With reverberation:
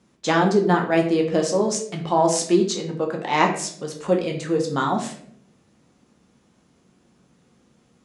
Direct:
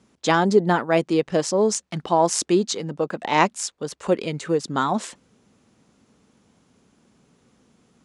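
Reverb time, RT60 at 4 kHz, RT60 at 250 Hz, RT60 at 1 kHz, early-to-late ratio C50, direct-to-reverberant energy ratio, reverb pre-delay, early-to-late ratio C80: 0.65 s, 0.40 s, 0.90 s, 0.50 s, 8.0 dB, 1.0 dB, 6 ms, 12.0 dB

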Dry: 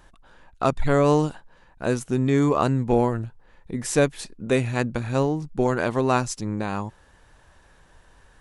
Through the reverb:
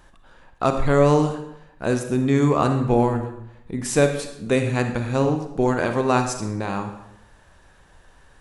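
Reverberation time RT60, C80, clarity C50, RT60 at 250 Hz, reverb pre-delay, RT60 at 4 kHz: 0.80 s, 10.0 dB, 7.5 dB, 0.85 s, 35 ms, 0.65 s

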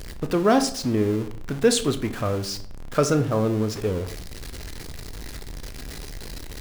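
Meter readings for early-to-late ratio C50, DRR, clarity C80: 13.5 dB, 8.5 dB, 17.0 dB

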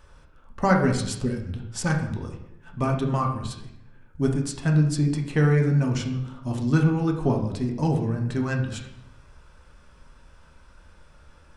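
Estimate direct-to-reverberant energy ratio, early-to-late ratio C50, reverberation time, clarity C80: 1.0 dB, 6.5 dB, 0.85 s, 9.5 dB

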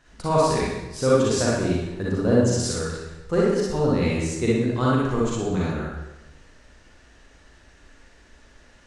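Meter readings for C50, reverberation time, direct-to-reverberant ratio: -4.5 dB, 1.0 s, -6.5 dB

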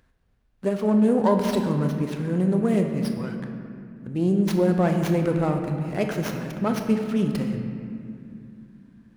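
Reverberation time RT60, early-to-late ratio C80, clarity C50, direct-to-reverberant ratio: 2.5 s, 6.5 dB, 5.5 dB, 4.0 dB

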